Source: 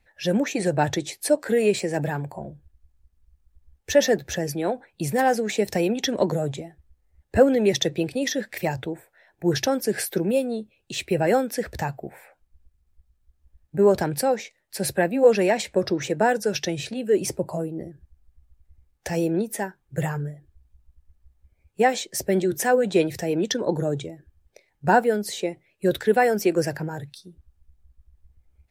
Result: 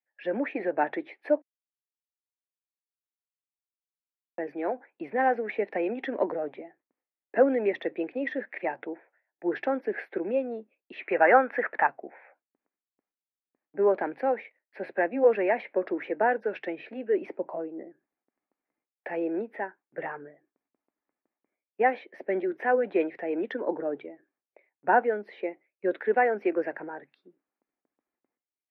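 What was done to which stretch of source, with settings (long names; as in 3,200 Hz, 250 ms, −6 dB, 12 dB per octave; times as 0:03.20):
0:01.42–0:04.38: silence
0:11.01–0:11.87: drawn EQ curve 370 Hz 0 dB, 1,300 Hz +14 dB, 4,500 Hz +1 dB
whole clip: noise gate with hold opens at −45 dBFS; elliptic band-pass filter 260–2,200 Hz, stop band 50 dB; low-shelf EQ 370 Hz −5.5 dB; level −2 dB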